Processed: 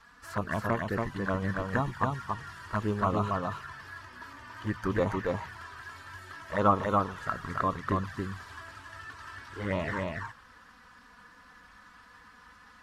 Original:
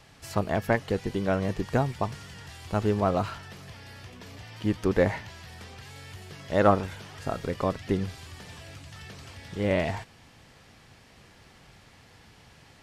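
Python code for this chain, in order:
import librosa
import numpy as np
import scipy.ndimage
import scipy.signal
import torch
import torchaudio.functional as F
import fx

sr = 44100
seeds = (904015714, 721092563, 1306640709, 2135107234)

p1 = fx.spec_quant(x, sr, step_db=15)
p2 = fx.band_shelf(p1, sr, hz=1300.0, db=15.0, octaves=1.1)
p3 = fx.env_flanger(p2, sr, rest_ms=4.6, full_db=-19.0)
p4 = p3 + fx.echo_single(p3, sr, ms=281, db=-3.0, dry=0)
y = F.gain(torch.from_numpy(p4), -4.5).numpy()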